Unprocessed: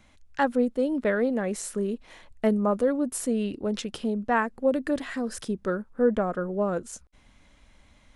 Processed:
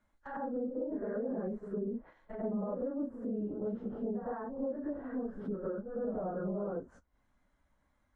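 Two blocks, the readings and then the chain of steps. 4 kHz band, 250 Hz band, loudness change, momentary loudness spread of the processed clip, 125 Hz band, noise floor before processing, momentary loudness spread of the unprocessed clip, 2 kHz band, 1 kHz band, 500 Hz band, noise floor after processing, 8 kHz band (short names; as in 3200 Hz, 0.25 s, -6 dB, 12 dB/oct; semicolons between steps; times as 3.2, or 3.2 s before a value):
under -35 dB, -9.5 dB, -11.0 dB, 4 LU, -8.0 dB, -58 dBFS, 8 LU, -21.0 dB, -14.0 dB, -10.5 dB, -76 dBFS, under -40 dB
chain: phase scrambler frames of 0.1 s; compressor, threshold -27 dBFS, peak gain reduction 10.5 dB; limiter -25 dBFS, peak gain reduction 7 dB; EQ curve 160 Hz 0 dB, 1600 Hz +4 dB, 2500 Hz -10 dB, 5500 Hz -8 dB, 8100 Hz -4 dB; on a send: reverse echo 0.104 s -8.5 dB; on the sum: gate -46 dBFS, range -13 dB; treble ducked by the level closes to 710 Hz, closed at -31.5 dBFS; gain -4 dB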